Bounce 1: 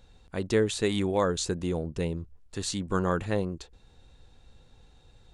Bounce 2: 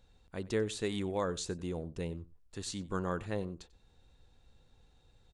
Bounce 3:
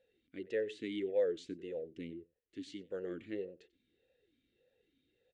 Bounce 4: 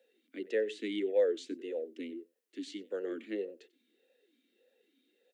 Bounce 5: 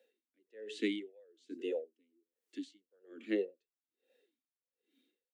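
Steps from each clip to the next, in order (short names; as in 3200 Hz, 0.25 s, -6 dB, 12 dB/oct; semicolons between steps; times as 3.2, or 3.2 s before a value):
outdoor echo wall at 16 m, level -20 dB; gain -8 dB
vowel sweep e-i 1.7 Hz; gain +6.5 dB
steep high-pass 210 Hz 72 dB/oct; high shelf 5400 Hz +4 dB; gain +4 dB
spectral noise reduction 6 dB; dB-linear tremolo 1.2 Hz, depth 40 dB; gain +5 dB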